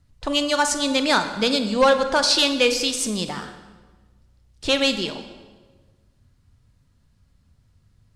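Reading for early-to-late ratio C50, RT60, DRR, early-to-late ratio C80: 9.5 dB, 1.4 s, 8.0 dB, 11.0 dB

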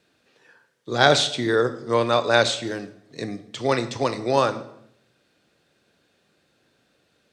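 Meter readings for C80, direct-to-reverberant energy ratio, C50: 16.5 dB, 11.0 dB, 14.0 dB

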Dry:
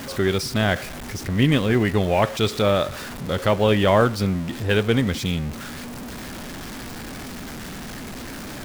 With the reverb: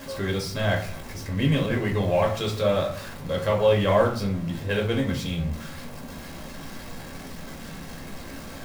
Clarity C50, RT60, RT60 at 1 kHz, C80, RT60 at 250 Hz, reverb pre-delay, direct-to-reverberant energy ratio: 9.0 dB, 0.45 s, 0.45 s, 14.0 dB, 0.55 s, 4 ms, −1.0 dB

